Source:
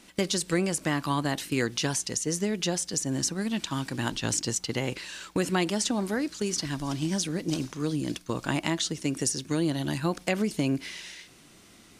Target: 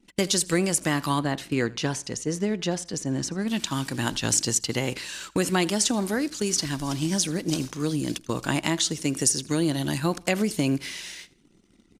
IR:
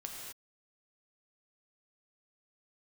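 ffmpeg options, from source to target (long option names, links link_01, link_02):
-filter_complex "[0:a]asettb=1/sr,asplit=3[link_01][link_02][link_03];[link_01]atrim=end=1.194[link_04];[link_02]atrim=start=1.19:end=3.48,asetpts=PTS-STARTPTS,afade=type=in:duration=0.004:curve=qsin,afade=type=out:start_time=2.286:duration=0.004:curve=qsin,aemphasis=mode=reproduction:type=75kf[link_05];[link_03]atrim=start=3.476[link_06];[link_04][link_05]acrossfade=duration=0.004:curve1=hsin:curve2=qsin[link_07];[link_07][link_06]acrossfade=duration=0.004:curve1=qsin:curve2=hsin,anlmdn=0.00398,highshelf=frequency=6600:gain=7,aecho=1:1:81|162:0.075|0.0262,volume=2.5dB"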